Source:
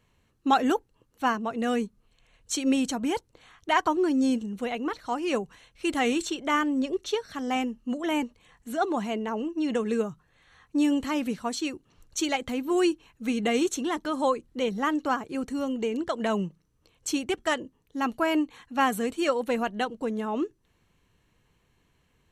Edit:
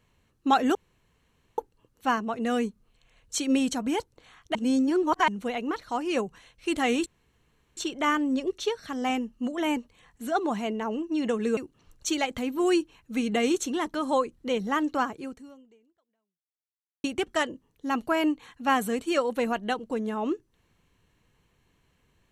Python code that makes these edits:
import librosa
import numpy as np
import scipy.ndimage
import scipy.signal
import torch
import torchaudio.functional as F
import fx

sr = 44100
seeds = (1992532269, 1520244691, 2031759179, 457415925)

y = fx.edit(x, sr, fx.insert_room_tone(at_s=0.75, length_s=0.83),
    fx.reverse_span(start_s=3.72, length_s=0.73),
    fx.insert_room_tone(at_s=6.23, length_s=0.71),
    fx.cut(start_s=10.03, length_s=1.65),
    fx.fade_out_span(start_s=15.26, length_s=1.89, curve='exp'), tone=tone)